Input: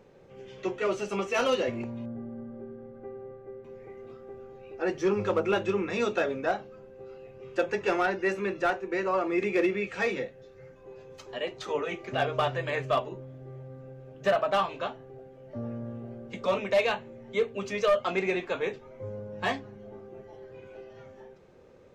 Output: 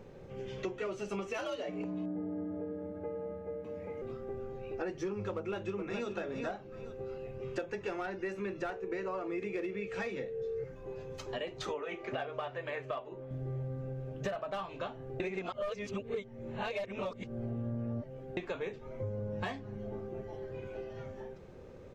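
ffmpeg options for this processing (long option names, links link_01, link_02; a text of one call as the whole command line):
ffmpeg -i in.wav -filter_complex "[0:a]asettb=1/sr,asplit=3[link_01][link_02][link_03];[link_01]atrim=end=1.384[link_04];[link_02]atrim=start=1.38:end=4.02,asetpts=PTS-STARTPTS,afade=type=in:duration=0.004:curve=qsin,afade=type=out:start_time=2.636:duration=0.004:curve=qsin,afreqshift=68[link_05];[link_03]atrim=start=4.016[link_06];[link_04][link_05]acrossfade=duration=0.004:curve1=hsin:curve2=qsin[link_07];[link_07][link_06]acrossfade=duration=0.004:curve1=qsin:curve2=hsin,asplit=2[link_08][link_09];[link_09]afade=type=in:start_time=5.36:duration=0.01,afade=type=out:start_time=6.15:duration=0.01,aecho=0:1:420|840:0.398107|0.0398107[link_10];[link_08][link_10]amix=inputs=2:normalize=0,asettb=1/sr,asplit=3[link_11][link_12][link_13];[link_11]atrim=end=8.694[link_14];[link_12]atrim=start=8.69:end=10.64,asetpts=PTS-STARTPTS,afade=type=in:duration=0.004:curve=qsin,afade=type=out:start_time=1.946:duration=0.004:curve=qsin,aeval=exprs='val(0)+0.02*sin(2*PI*450*n/s)':channel_layout=same[link_15];[link_13]atrim=start=10.636[link_16];[link_14][link_15]acrossfade=duration=0.004:curve1=hsin:curve2=qsin[link_17];[link_17][link_16]acrossfade=duration=0.004:curve1=qsin:curve2=hsin,asettb=1/sr,asplit=3[link_18][link_19][link_20];[link_18]atrim=end=11.744[link_21];[link_19]atrim=start=11.74:end=13.31,asetpts=PTS-STARTPTS,afade=type=in:duration=0.004:curve=qsin,afade=type=out:start_time=1.566:duration=0.004:curve=qsin,bass=frequency=250:gain=-13,treble=frequency=4000:gain=-9[link_22];[link_20]atrim=start=13.306[link_23];[link_21][link_22]acrossfade=duration=0.004:curve1=hsin:curve2=qsin[link_24];[link_24][link_23]acrossfade=duration=0.004:curve1=qsin:curve2=hsin,asplit=3[link_25][link_26][link_27];[link_25]atrim=end=15.202[link_28];[link_26]atrim=start=15.198:end=18.372,asetpts=PTS-STARTPTS,areverse[link_29];[link_27]atrim=start=18.368[link_30];[link_28][link_29]acrossfade=duration=0.004:curve1=hsin:curve2=hsin[link_31];[link_31][link_30]acrossfade=duration=0.004:curve1=hsin:curve2=hsin,lowshelf=frequency=110:gain=8,acompressor=threshold=-37dB:ratio=10,lowshelf=frequency=400:gain=3,volume=1.5dB" out.wav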